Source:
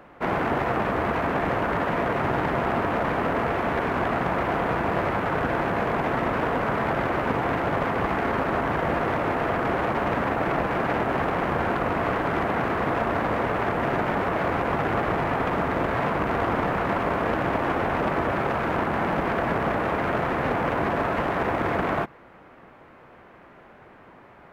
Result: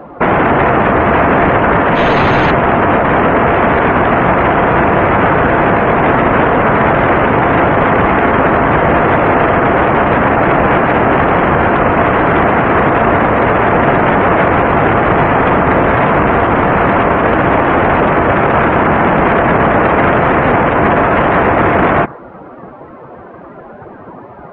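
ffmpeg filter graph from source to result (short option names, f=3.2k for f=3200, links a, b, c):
-filter_complex "[0:a]asettb=1/sr,asplit=3[a][b][c];[a]atrim=end=1.954[d];[b]atrim=start=1.95:end=2.51,asetpts=PTS-STARTPTS,afade=t=in:d=0.004:c=qsin,afade=t=out:st=0.556:d=0.004:c=qsin,aeval=exprs='val(0)+0.00355*sin(2*PI*6400*n/s)':c=same,asoftclip=type=hard:threshold=-29.5dB[e];[c]atrim=start=2.506[f];[d][e]acrossfade=d=0.004:c1=hsin:c2=qsin[g];[g][f]acrossfade=d=0.004:c1=qsin:c2=hsin,lowpass=4.8k,afftdn=nr=17:nf=-45,alimiter=level_in=22.5dB:limit=-1dB:release=50:level=0:latency=1,volume=-1dB"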